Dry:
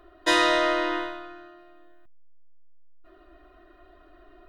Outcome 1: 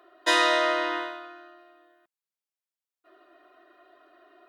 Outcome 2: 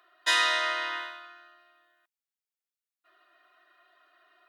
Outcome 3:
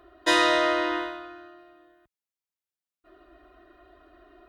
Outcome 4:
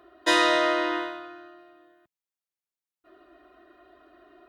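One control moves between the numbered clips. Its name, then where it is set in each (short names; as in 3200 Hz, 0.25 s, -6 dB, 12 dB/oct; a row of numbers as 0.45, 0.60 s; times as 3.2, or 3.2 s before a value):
HPF, cutoff: 420, 1300, 47, 120 Hz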